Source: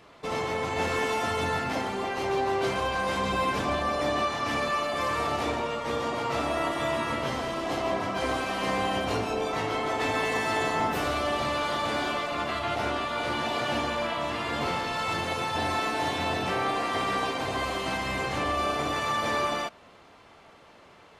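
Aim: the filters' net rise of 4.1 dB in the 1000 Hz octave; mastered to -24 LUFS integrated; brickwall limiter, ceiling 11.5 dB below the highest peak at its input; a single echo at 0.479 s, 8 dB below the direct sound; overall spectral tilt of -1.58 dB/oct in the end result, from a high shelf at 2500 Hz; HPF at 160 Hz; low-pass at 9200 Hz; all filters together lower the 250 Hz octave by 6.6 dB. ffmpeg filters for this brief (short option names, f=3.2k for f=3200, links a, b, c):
-af "highpass=160,lowpass=9.2k,equalizer=f=250:t=o:g=-8.5,equalizer=f=1k:t=o:g=4,highshelf=f=2.5k:g=8.5,alimiter=limit=-22.5dB:level=0:latency=1,aecho=1:1:479:0.398,volume=6dB"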